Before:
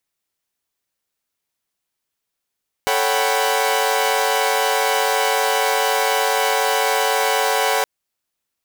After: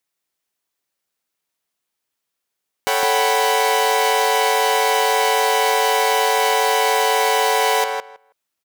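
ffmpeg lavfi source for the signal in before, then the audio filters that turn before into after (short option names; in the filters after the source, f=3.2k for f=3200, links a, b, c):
-f lavfi -i "aevalsrc='0.0944*((2*mod(440*t,1)-1)+(2*mod(554.37*t,1)-1)+(2*mod(739.99*t,1)-1)+(2*mod(783.99*t,1)-1)+(2*mod(987.77*t,1)-1))':d=4.97:s=44100"
-filter_complex "[0:a]lowshelf=f=110:g=-10,asplit=2[a][b];[b]adelay=161,lowpass=f=2.6k:p=1,volume=-4dB,asplit=2[c][d];[d]adelay=161,lowpass=f=2.6k:p=1,volume=0.15,asplit=2[e][f];[f]adelay=161,lowpass=f=2.6k:p=1,volume=0.15[g];[c][e][g]amix=inputs=3:normalize=0[h];[a][h]amix=inputs=2:normalize=0"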